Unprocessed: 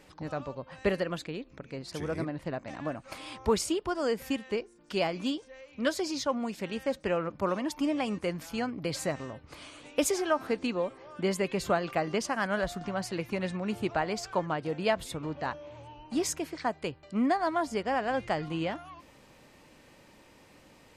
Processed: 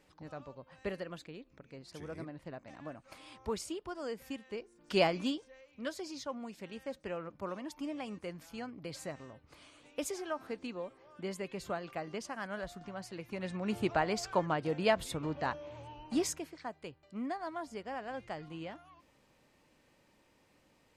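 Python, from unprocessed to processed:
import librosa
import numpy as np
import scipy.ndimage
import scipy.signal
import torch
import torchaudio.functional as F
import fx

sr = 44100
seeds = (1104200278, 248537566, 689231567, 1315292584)

y = fx.gain(x, sr, db=fx.line((4.53, -10.5), (5.0, 2.0), (5.73, -10.5), (13.22, -10.5), (13.76, -1.0), (16.15, -1.0), (16.57, -11.5)))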